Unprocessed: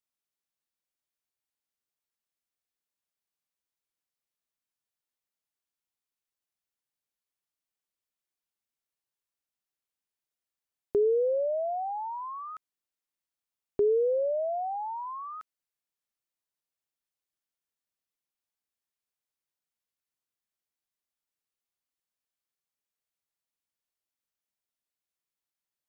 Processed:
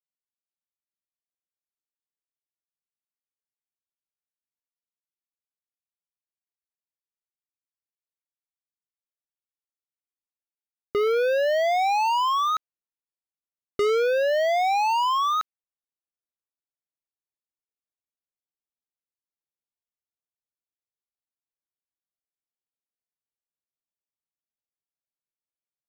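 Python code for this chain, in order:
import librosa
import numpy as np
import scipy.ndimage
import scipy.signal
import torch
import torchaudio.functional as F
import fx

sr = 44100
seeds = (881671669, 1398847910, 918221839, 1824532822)

y = fx.rider(x, sr, range_db=5, speed_s=0.5)
y = fx.env_lowpass(y, sr, base_hz=850.0, full_db=-30.0)
y = fx.leveller(y, sr, passes=5)
y = y * 10.0 ** (-2.0 / 20.0)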